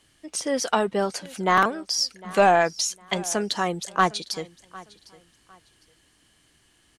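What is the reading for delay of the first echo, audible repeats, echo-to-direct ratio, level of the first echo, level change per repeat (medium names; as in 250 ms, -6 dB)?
755 ms, 2, -20.5 dB, -21.0 dB, -11.5 dB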